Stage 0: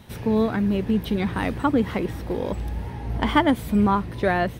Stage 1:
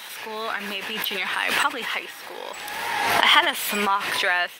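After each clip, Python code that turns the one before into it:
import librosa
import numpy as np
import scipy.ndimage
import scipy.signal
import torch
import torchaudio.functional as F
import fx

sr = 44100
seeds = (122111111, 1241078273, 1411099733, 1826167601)

y = scipy.signal.sosfilt(scipy.signal.butter(2, 1300.0, 'highpass', fs=sr, output='sos'), x)
y = fx.dynamic_eq(y, sr, hz=2800.0, q=3.6, threshold_db=-51.0, ratio=4.0, max_db=6)
y = fx.pre_swell(y, sr, db_per_s=28.0)
y = y * librosa.db_to_amplitude(6.0)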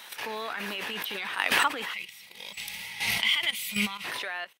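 y = fx.fade_out_tail(x, sr, length_s=0.53)
y = fx.level_steps(y, sr, step_db=12)
y = fx.spec_box(y, sr, start_s=1.93, length_s=2.12, low_hz=220.0, high_hz=1900.0, gain_db=-17)
y = y * librosa.db_to_amplitude(1.5)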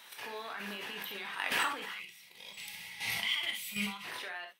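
y = fx.rev_gated(x, sr, seeds[0], gate_ms=90, shape='flat', drr_db=3.0)
y = y * librosa.db_to_amplitude(-9.0)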